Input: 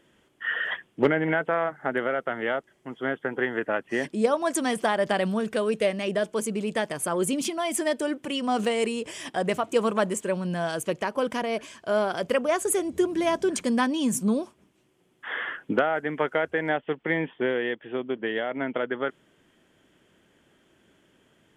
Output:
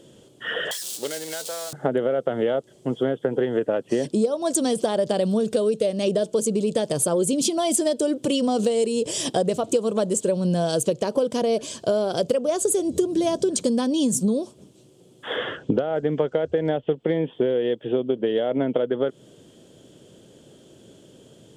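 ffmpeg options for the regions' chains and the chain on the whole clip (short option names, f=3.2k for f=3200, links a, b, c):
-filter_complex "[0:a]asettb=1/sr,asplit=3[a][b][c];[a]atrim=end=0.714[d];[b]atrim=start=0.71:end=1.73,asetpts=PTS-STARTPTS,afade=t=in:d=0.004:c=qsin,afade=t=out:st=1.016:d=0.004:c=qsin,aeval=exprs='val(0)+0.5*0.0237*sgn(val(0))':c=same,aderivative[e];[c]atrim=start=1.726[f];[d][e]acrossfade=d=0.004:c1=hsin:c2=qsin[g];[g][f]acrossfade=d=0.004:c1=qsin:c2=hsin,asettb=1/sr,asplit=3[h][i][j];[h]atrim=end=15.364[k];[i]atrim=start=15.36:end=16.96,asetpts=PTS-STARTPTS,afade=t=in:d=0.004:c=qsin,afade=t=out:st=1.596:d=0.004:c=qsin,lowpass=f=7k:w=0.5412,lowpass=f=7k:w=1.3066,equalizer=f=72:t=o:w=1:g=14[l];[j]atrim=start=16.956[m];[k][l]acrossfade=d=0.004:c1=hsin:c2=qsin[n];[n][m]acrossfade=d=0.004:c1=qsin:c2=hsin,equalizer=f=125:t=o:w=1:g=11,equalizer=f=250:t=o:w=1:g=3,equalizer=f=500:t=o:w=1:g=11,equalizer=f=1k:t=o:w=1:g=-3,equalizer=f=2k:t=o:w=1:g=-11,equalizer=f=4k:t=o:w=1:g=10,equalizer=f=8k:t=o:w=1:g=9,acompressor=threshold=-24dB:ratio=10,volume=5.5dB"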